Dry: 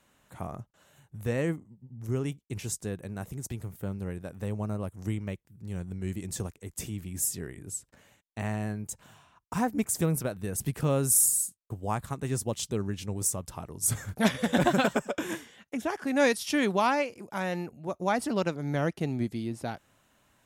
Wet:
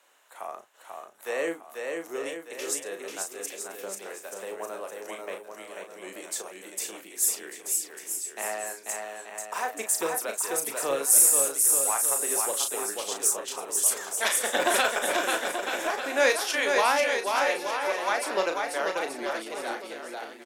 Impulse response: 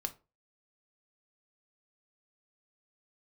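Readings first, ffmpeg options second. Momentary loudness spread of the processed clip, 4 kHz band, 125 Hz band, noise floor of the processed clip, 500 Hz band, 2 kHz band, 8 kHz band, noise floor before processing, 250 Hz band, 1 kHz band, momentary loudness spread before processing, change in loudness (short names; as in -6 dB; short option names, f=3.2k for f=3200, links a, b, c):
16 LU, +7.0 dB, under -25 dB, -49 dBFS, +3.0 dB, +6.5 dB, +7.0 dB, -72 dBFS, -10.0 dB, +4.0 dB, 14 LU, +4.5 dB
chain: -filter_complex "[0:a]highpass=f=410:w=0.5412,highpass=f=410:w=1.3066,acrossover=split=560|1000[a][b][c];[a]tremolo=f=1.3:d=0.74[d];[b]asoftclip=type=tanh:threshold=-35.5dB[e];[d][e][c]amix=inputs=3:normalize=0,asplit=2[f][g];[g]adelay=36,volume=-7dB[h];[f][h]amix=inputs=2:normalize=0,aecho=1:1:490|882|1196|1446|1647:0.631|0.398|0.251|0.158|0.1,volume=4dB"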